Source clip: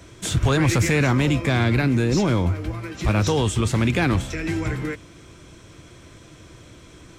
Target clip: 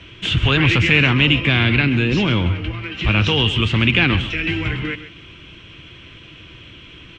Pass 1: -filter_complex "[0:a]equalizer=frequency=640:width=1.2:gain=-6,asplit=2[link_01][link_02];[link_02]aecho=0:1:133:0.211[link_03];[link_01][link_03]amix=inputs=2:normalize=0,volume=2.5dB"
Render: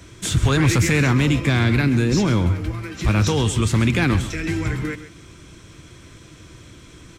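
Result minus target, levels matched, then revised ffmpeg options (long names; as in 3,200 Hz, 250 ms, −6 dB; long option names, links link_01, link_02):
4,000 Hz band −7.0 dB
-filter_complex "[0:a]lowpass=frequency=2900:width_type=q:width=7.2,equalizer=frequency=640:width=1.2:gain=-6,asplit=2[link_01][link_02];[link_02]aecho=0:1:133:0.211[link_03];[link_01][link_03]amix=inputs=2:normalize=0,volume=2.5dB"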